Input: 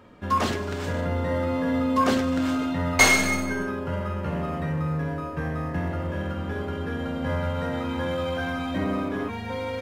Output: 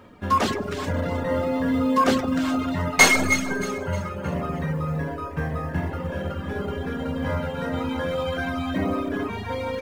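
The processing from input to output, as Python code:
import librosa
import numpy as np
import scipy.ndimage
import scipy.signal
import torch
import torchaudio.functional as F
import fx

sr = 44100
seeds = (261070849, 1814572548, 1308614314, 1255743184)

y = fx.echo_alternate(x, sr, ms=156, hz=1200.0, feedback_pct=63, wet_db=-7.0)
y = fx.quant_companded(y, sr, bits=8)
y = fx.dereverb_blind(y, sr, rt60_s=0.87)
y = F.gain(torch.from_numpy(y), 3.0).numpy()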